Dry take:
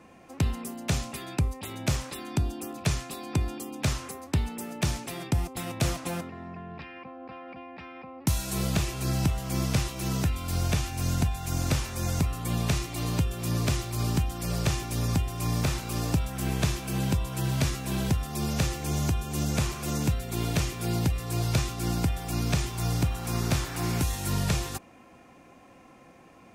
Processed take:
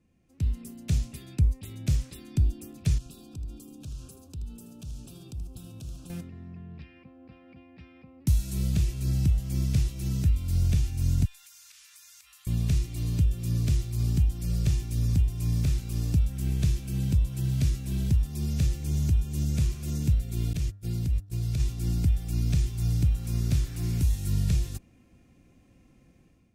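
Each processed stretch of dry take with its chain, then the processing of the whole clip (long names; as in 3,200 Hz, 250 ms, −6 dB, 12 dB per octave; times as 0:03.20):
0:02.98–0:06.10: downward compressor 10 to 1, threshold −36 dBFS + Butterworth band-reject 2,000 Hz, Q 1.7 + single-tap delay 79 ms −10.5 dB
0:11.25–0:12.47: inverse Chebyshev high-pass filter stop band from 460 Hz, stop band 50 dB + downward compressor 12 to 1, threshold −40 dBFS
0:20.53–0:21.60: noise gate −31 dBFS, range −32 dB + hum removal 99.4 Hz, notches 19 + downward compressor 2.5 to 1, threshold −27 dBFS
whole clip: guitar amp tone stack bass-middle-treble 10-0-1; automatic gain control gain up to 11 dB; level +2.5 dB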